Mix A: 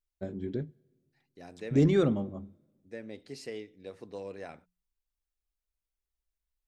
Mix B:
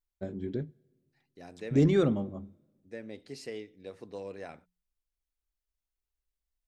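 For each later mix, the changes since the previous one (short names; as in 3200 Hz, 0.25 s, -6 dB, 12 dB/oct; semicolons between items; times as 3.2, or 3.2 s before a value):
none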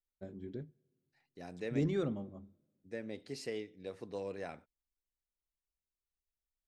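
first voice -9.5 dB; second voice: remove notches 60/120/180 Hz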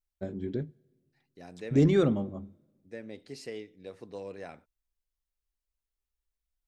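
first voice +10.5 dB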